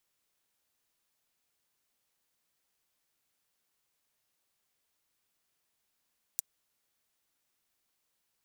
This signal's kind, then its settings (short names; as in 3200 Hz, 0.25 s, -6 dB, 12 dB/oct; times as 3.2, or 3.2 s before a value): closed hi-hat, high-pass 6800 Hz, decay 0.02 s